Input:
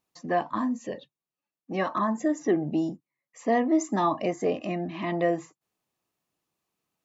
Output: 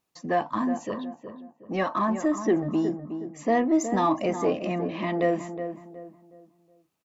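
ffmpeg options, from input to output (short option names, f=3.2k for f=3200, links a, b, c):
-filter_complex "[0:a]asplit=2[a][b];[b]asoftclip=type=tanh:threshold=-29dB,volume=-10.5dB[c];[a][c]amix=inputs=2:normalize=0,asplit=2[d][e];[e]adelay=367,lowpass=f=1.3k:p=1,volume=-8.5dB,asplit=2[f][g];[g]adelay=367,lowpass=f=1.3k:p=1,volume=0.36,asplit=2[h][i];[i]adelay=367,lowpass=f=1.3k:p=1,volume=0.36,asplit=2[j][k];[k]adelay=367,lowpass=f=1.3k:p=1,volume=0.36[l];[d][f][h][j][l]amix=inputs=5:normalize=0"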